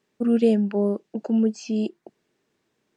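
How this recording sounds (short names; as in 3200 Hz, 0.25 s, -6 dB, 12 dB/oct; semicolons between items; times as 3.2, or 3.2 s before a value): noise floor -75 dBFS; spectral tilt -6.0 dB/oct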